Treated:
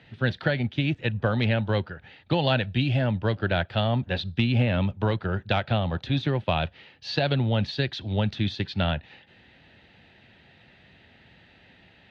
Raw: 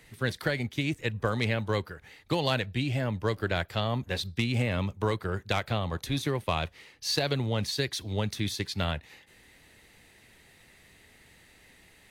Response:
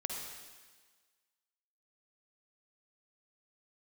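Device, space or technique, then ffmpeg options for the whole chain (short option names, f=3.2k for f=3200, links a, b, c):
guitar cabinet: -filter_complex "[0:a]highpass=81,equalizer=f=310:t=q:w=4:g=-4,equalizer=f=440:t=q:w=4:g=-7,equalizer=f=1.1k:t=q:w=4:g=-10,equalizer=f=2.1k:t=q:w=4:g=-9,lowpass=f=3.4k:w=0.5412,lowpass=f=3.4k:w=1.3066,asettb=1/sr,asplit=3[a][b][c];[a]atrim=end=2.634[d];[b]atrim=start=2.63:end=3.12,asetpts=PTS-STARTPTS,afade=t=in:d=0.004:c=qsin,afade=t=out:st=0.486:d=0.004:c=qsin,highshelf=f=6.5k:g=11.5[e];[c]atrim=start=3.116[f];[d][e]acrossfade=d=0.004:c1=hsin:c2=qsin[g];[g][f]acrossfade=d=0.004:c1=qsin:c2=hsin,volume=7dB"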